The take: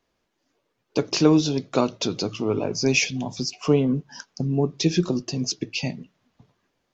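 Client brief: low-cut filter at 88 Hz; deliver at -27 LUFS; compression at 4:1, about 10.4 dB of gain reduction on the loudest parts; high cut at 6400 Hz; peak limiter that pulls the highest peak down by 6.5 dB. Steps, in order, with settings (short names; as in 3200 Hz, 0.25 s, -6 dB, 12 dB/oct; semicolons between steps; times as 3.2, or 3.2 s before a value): HPF 88 Hz; LPF 6400 Hz; compressor 4:1, threshold -25 dBFS; gain +4.5 dB; limiter -15.5 dBFS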